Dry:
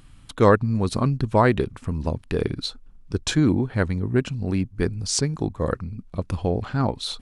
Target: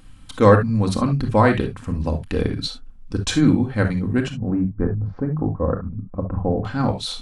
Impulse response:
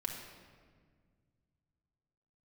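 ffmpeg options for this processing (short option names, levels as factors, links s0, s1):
-filter_complex "[0:a]asettb=1/sr,asplit=3[s0][s1][s2];[s0]atrim=end=4.304[s3];[s1]atrim=start=4.3:end=6.65,asetpts=PTS-STARTPTS,afade=t=in:d=0.004:c=qsin,afade=t=out:st=2.346:d=0.004:c=qsin,lowpass=f=1300:w=0.5412,lowpass=f=1300:w=1.3066[s4];[s2]atrim=start=6.646[s5];[s3][s4]acrossfade=d=0.004:c1=hsin:c2=qsin[s6];[s6][s5]acrossfade=d=0.004:c1=qsin:c2=hsin[s7];[1:a]atrim=start_sample=2205,atrim=end_sample=3528[s8];[s7][s8]afir=irnorm=-1:irlink=0,volume=1.33"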